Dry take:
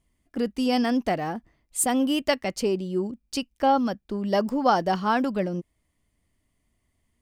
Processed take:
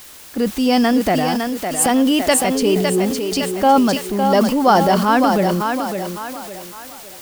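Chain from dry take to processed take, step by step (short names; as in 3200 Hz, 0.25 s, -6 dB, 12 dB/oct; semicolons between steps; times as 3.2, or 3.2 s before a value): 2.54–2.97 whine 430 Hz -32 dBFS; in parallel at -9.5 dB: requantised 6-bit, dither triangular; on the sum: thinning echo 0.558 s, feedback 41%, high-pass 240 Hz, level -5.5 dB; transient shaper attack -2 dB, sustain +6 dB; gain +5.5 dB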